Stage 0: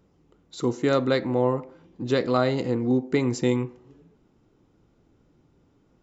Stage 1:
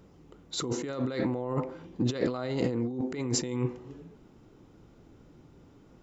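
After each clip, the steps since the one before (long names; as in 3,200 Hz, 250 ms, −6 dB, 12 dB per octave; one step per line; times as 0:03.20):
compressor whose output falls as the input rises −31 dBFS, ratio −1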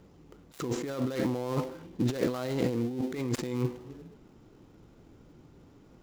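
gap after every zero crossing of 0.13 ms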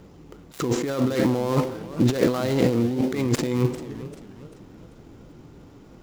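feedback echo with a swinging delay time 398 ms, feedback 43%, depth 211 cents, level −15 dB
level +8.5 dB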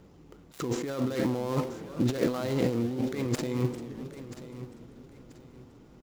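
repeating echo 984 ms, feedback 30%, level −14 dB
level −7 dB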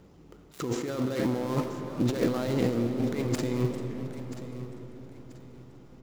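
convolution reverb RT60 4.9 s, pre-delay 40 ms, DRR 7.5 dB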